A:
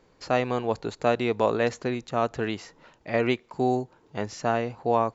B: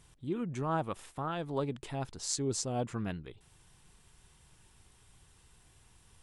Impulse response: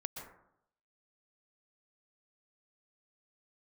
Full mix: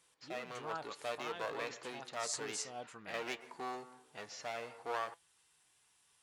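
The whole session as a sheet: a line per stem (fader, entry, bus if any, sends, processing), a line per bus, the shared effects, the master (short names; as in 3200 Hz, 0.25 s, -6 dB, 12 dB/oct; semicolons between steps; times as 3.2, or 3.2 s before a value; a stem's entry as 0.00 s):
-10.5 dB, 0.00 s, send -7 dB, LPF 5900 Hz; AGC gain up to 9 dB; one-sided clip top -23 dBFS
-0.5 dB, 0.00 s, no send, dry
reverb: on, RT60 0.75 s, pre-delay 0.112 s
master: HPF 1200 Hz 6 dB/oct; flange 0.58 Hz, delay 5.9 ms, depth 1.1 ms, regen +76%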